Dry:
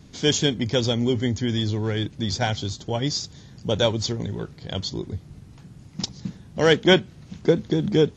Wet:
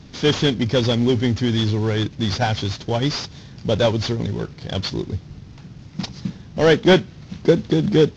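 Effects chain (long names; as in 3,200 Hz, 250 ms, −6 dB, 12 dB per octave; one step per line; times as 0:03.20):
variable-slope delta modulation 32 kbit/s
in parallel at −8 dB: soft clipping −19 dBFS, distortion −9 dB
on the sum: level +2.5 dB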